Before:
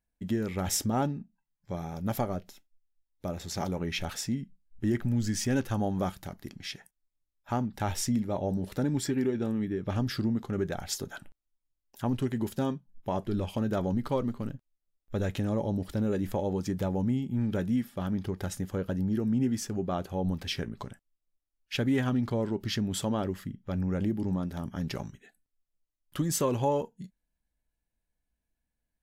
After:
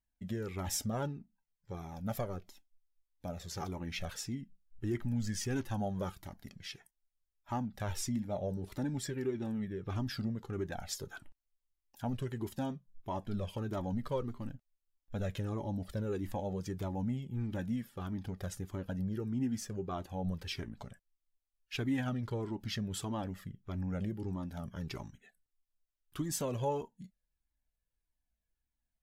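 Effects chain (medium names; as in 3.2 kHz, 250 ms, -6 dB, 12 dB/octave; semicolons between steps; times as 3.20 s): Shepard-style flanger falling 1.6 Hz; trim -2 dB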